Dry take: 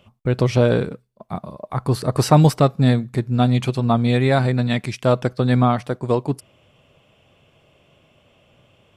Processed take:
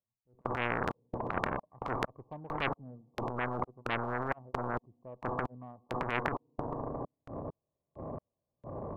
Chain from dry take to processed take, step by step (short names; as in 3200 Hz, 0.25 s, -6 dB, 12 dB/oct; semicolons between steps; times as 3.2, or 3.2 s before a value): brick-wall FIR low-pass 1200 Hz; FDN reverb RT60 1.8 s, low-frequency decay 1.35×, high-frequency decay 0.75×, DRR 19.5 dB; added harmonics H 2 -37 dB, 4 -39 dB, 6 -27 dB, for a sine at -1.5 dBFS; dynamic EQ 150 Hz, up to -4 dB, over -32 dBFS, Q 1.6; step gate "..xx.xx.x..x" 66 bpm -60 dB; transient shaper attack -12 dB, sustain +11 dB; spectral compressor 10:1; gain -2.5 dB